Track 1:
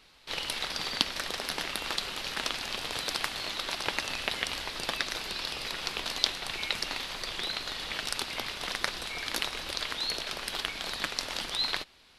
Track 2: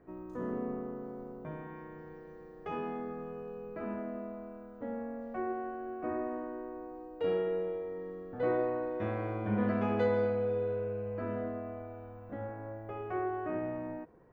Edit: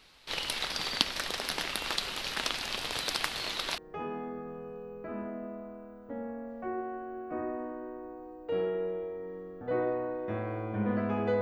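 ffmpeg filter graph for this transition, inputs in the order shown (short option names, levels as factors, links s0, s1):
-filter_complex "[1:a]asplit=2[s0][s1];[0:a]apad=whole_dur=11.41,atrim=end=11.41,atrim=end=3.782[s2];[s1]atrim=start=2.498:end=10.13[s3];[s0]atrim=start=1.97:end=2.5,asetpts=PTS-STARTPTS,volume=0.473,afade=t=in:d=0.004:c=hsin,afade=t=out:st=0.526:d=0.004:c=hsin,adelay=143325S[s4];[s2][s3]acrossfade=d=0.004:c1=hsin:c2=hsin[s5];[s5][s4]amix=inputs=2:normalize=0"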